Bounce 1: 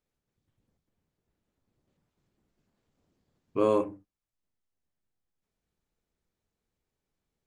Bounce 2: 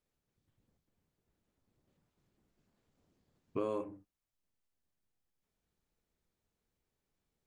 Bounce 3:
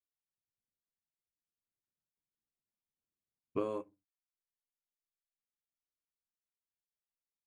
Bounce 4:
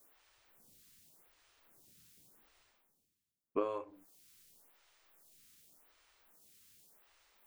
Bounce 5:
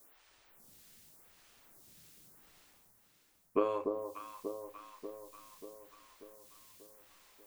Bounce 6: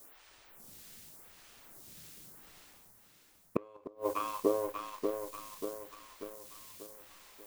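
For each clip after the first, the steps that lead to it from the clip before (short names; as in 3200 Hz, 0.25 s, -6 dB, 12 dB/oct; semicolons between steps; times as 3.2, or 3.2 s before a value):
compressor 4:1, threshold -33 dBFS, peak gain reduction 11.5 dB; gain -1 dB
upward expander 2.5:1, over -53 dBFS; gain +3 dB
reverse; upward compressor, threshold -43 dBFS; reverse; photocell phaser 0.87 Hz; gain +3.5 dB
echo with dull and thin repeats by turns 0.294 s, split 940 Hz, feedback 75%, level -5 dB; gain +4 dB
sample leveller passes 1; flipped gate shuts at -22 dBFS, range -33 dB; gain +8 dB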